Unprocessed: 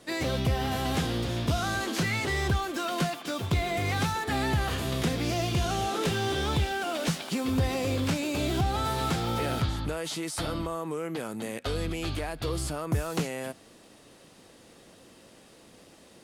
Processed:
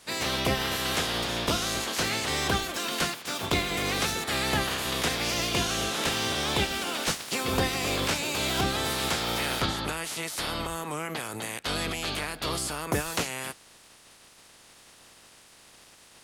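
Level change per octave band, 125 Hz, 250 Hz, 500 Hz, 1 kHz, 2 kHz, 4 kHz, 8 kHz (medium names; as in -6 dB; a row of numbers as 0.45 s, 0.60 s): -6.0 dB, -3.0 dB, -0.5 dB, +0.5 dB, +4.0 dB, +6.5 dB, +7.0 dB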